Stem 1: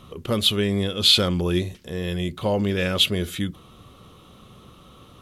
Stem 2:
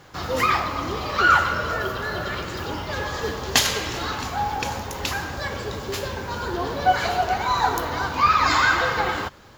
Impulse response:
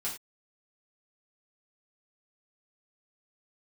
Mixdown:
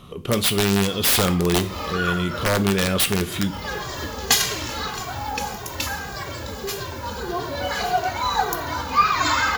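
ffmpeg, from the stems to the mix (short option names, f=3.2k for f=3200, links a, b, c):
-filter_complex "[0:a]aeval=exprs='(mod(5.62*val(0)+1,2)-1)/5.62':c=same,volume=0.5dB,asplit=3[a][b][c];[b]volume=-9dB[d];[1:a]highshelf=f=6.8k:g=9,asplit=2[e][f];[f]adelay=2,afreqshift=-1.7[g];[e][g]amix=inputs=2:normalize=1,adelay=750,volume=1.5dB[h];[c]apad=whole_len=455618[i];[h][i]sidechaincompress=threshold=-34dB:ratio=8:attack=46:release=125[j];[2:a]atrim=start_sample=2205[k];[d][k]afir=irnorm=-1:irlink=0[l];[a][j][l]amix=inputs=3:normalize=0"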